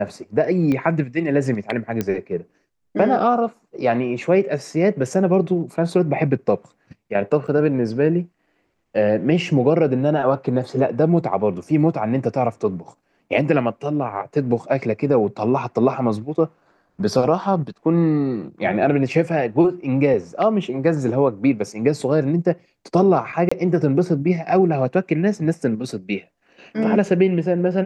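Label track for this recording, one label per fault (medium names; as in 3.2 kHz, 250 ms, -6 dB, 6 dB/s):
0.720000	0.720000	pop -13 dBFS
2.010000	2.010000	pop -9 dBFS
7.470000	7.480000	dropout 6.9 ms
23.490000	23.520000	dropout 25 ms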